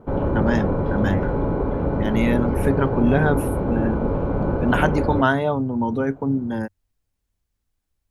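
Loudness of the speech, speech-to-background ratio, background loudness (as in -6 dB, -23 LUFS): -23.5 LUFS, 0.0 dB, -23.5 LUFS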